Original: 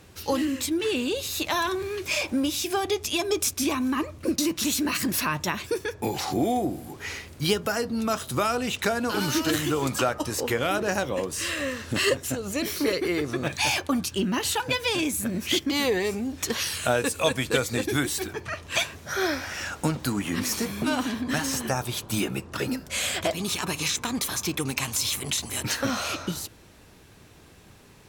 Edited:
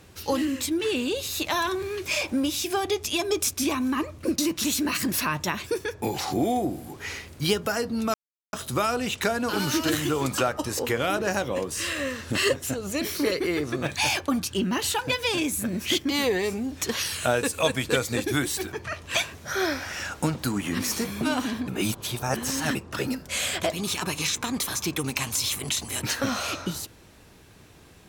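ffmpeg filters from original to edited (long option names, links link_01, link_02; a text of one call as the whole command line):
ffmpeg -i in.wav -filter_complex "[0:a]asplit=4[link_01][link_02][link_03][link_04];[link_01]atrim=end=8.14,asetpts=PTS-STARTPTS,afade=type=out:start_time=8.136:duration=0.004:curve=hsin,apad=pad_dur=0.39[link_05];[link_02]atrim=start=8.14:end=21.292,asetpts=PTS-STARTPTS,afade=type=in:duration=0.004:curve=hsin[link_06];[link_03]atrim=start=21.288:end=22.362,asetpts=PTS-STARTPTS,areverse[link_07];[link_04]atrim=start=22.358[link_08];[link_05][link_06]concat=n=2:v=0:a=1[link_09];[link_09][link_07]acrossfade=duration=0.004:curve1=hsin:curve2=hsin[link_10];[link_10][link_08]acrossfade=duration=0.004:curve1=hsin:curve2=hsin" out.wav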